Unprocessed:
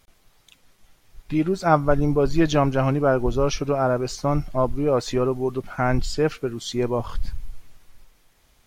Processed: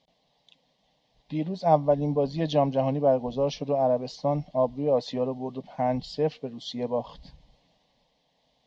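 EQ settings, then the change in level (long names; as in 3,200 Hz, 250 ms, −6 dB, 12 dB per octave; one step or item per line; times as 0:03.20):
loudspeaker in its box 120–4,300 Hz, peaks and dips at 210 Hz −7 dB, 1,600 Hz −5 dB, 2,400 Hz −9 dB
phaser with its sweep stopped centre 360 Hz, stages 6
0.0 dB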